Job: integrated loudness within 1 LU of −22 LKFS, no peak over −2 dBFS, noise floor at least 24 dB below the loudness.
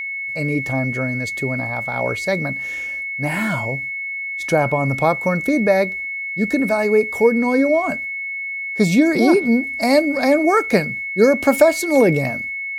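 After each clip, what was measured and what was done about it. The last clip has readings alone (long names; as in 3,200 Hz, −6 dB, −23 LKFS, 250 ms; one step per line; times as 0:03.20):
interfering tone 2,200 Hz; level of the tone −24 dBFS; integrated loudness −18.5 LKFS; sample peak −2.0 dBFS; target loudness −22.0 LKFS
→ notch filter 2,200 Hz, Q 30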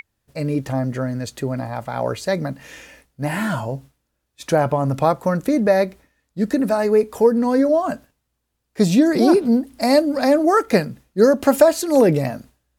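interfering tone none found; integrated loudness −19.0 LKFS; sample peak −3.0 dBFS; target loudness −22.0 LKFS
→ level −3 dB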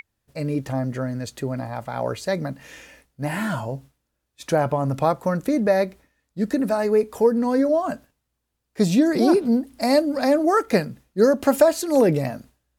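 integrated loudness −22.0 LKFS; sample peak −6.0 dBFS; background noise floor −78 dBFS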